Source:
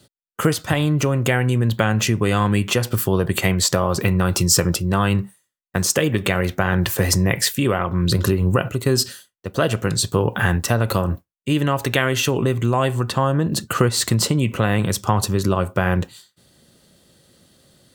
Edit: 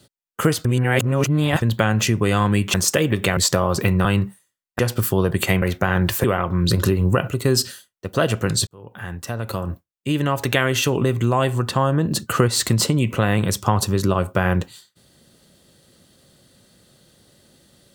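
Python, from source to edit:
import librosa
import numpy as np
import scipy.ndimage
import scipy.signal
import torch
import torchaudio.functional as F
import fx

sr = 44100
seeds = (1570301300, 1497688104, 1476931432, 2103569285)

y = fx.edit(x, sr, fx.reverse_span(start_s=0.65, length_s=0.97),
    fx.swap(start_s=2.74, length_s=0.83, other_s=5.76, other_length_s=0.63),
    fx.cut(start_s=4.25, length_s=0.77),
    fx.cut(start_s=7.01, length_s=0.64),
    fx.fade_in_span(start_s=10.08, length_s=1.84), tone=tone)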